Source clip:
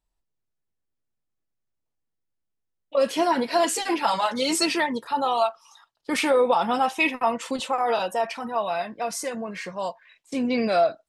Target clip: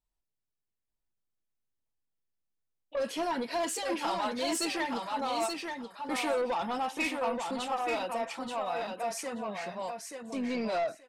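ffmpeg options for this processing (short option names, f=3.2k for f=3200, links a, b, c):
-af "asoftclip=type=tanh:threshold=-19dB,aecho=1:1:880|1760|2640:0.562|0.0956|0.0163,volume=-7dB"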